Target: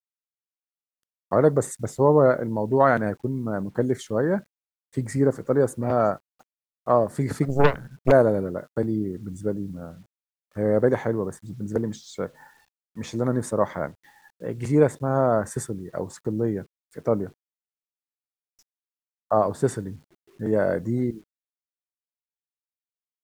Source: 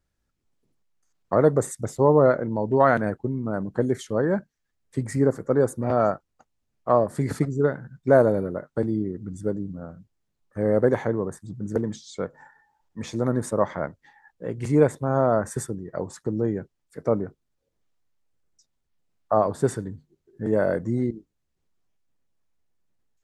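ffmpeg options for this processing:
-filter_complex "[0:a]acrusher=bits=9:mix=0:aa=0.000001,asplit=3[a][b][c];[a]afade=t=out:st=7.48:d=0.02[d];[b]aeval=exprs='0.398*(cos(1*acos(clip(val(0)/0.398,-1,1)))-cos(1*PI/2))+0.158*(cos(6*acos(clip(val(0)/0.398,-1,1)))-cos(6*PI/2))':c=same,afade=t=in:st=7.48:d=0.02,afade=t=out:st=8.1:d=0.02[e];[c]afade=t=in:st=8.1:d=0.02[f];[d][e][f]amix=inputs=3:normalize=0"

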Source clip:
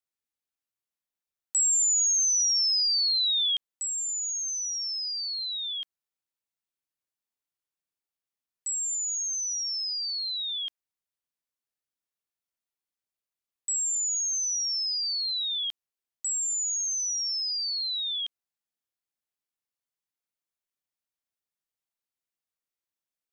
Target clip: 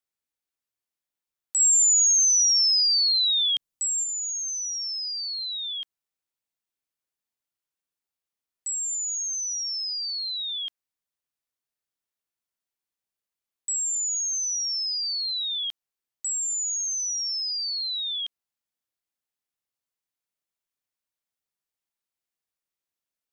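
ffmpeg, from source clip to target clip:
-filter_complex "[0:a]asettb=1/sr,asplit=3[a][b][c];[a]atrim=end=1.604[d];[b]atrim=start=1.6:end=4.04,asetpts=PTS-STARTPTS,afade=t=in:d=0.004:c=qsin,afade=t=out:st=2.436:d=0.004:c=qsin,bass=f=250:g=10,treble=f=4k:g=4[e];[c]atrim=start=4.036[f];[d][e]acrossfade=d=0.004:c1=hsin:c2=qsin[g];[g][f]acrossfade=d=0.004:c1=qsin:c2=hsin,volume=1dB"

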